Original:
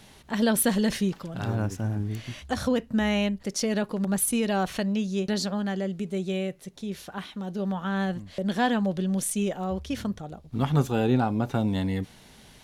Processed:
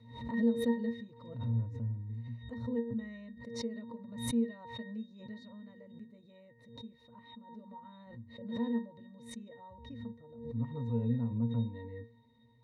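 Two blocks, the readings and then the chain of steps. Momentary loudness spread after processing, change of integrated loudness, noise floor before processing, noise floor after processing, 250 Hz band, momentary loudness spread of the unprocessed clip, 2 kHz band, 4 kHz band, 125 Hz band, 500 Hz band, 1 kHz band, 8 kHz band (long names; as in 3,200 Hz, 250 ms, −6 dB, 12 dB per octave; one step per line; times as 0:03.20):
19 LU, −9.5 dB, −52 dBFS, −62 dBFS, −10.0 dB, 11 LU, −17.0 dB, −15.5 dB, −8.0 dB, −12.0 dB, −18.5 dB, −21.5 dB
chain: resonances in every octave A#, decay 0.3 s
background raised ahead of every attack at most 73 dB per second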